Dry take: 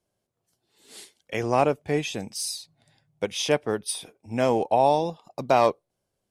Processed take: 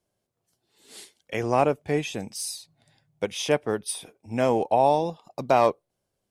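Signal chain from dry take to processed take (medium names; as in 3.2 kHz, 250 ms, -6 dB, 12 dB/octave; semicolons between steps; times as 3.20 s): dynamic bell 4.5 kHz, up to -4 dB, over -41 dBFS, Q 1.2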